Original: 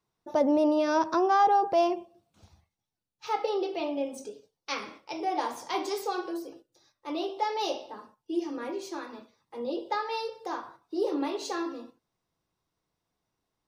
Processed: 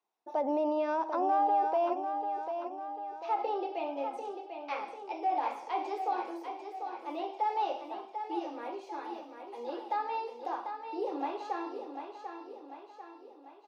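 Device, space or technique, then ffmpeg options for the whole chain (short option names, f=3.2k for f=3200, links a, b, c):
laptop speaker: -filter_complex "[0:a]acrossover=split=3200[a][b];[b]acompressor=threshold=-55dB:ratio=4:attack=1:release=60[c];[a][c]amix=inputs=2:normalize=0,asettb=1/sr,asplit=3[d][e][f];[d]atrim=end=9.054[g];[e]atrim=start=9.05:end=9.97,asetpts=PTS-STARTPTS,afade=t=in:d=0.004:c=qsin,afade=t=out:st=0.916:d=0.004:c=qsin,aemphasis=mode=production:type=cd[h];[f]atrim=start=9.966[i];[g][h]acrossfade=d=0.004:c1=hsin:c2=qsin[j];[j][i]acrossfade=d=0.004:c1=qsin:c2=hsin,highpass=f=270:w=0.5412,highpass=f=270:w=1.3066,equalizer=f=800:t=o:w=0.52:g=11.5,equalizer=f=2.5k:t=o:w=0.39:g=5,highshelf=f=9.1k:g=-5.5,alimiter=limit=-15dB:level=0:latency=1:release=42,aecho=1:1:744|1488|2232|2976|3720|4464:0.422|0.219|0.114|0.0593|0.0308|0.016,volume=-7.5dB"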